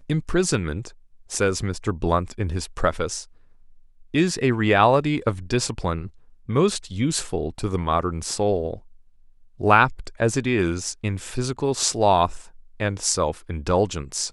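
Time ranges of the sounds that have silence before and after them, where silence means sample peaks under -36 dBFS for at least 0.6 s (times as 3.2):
4.14–8.78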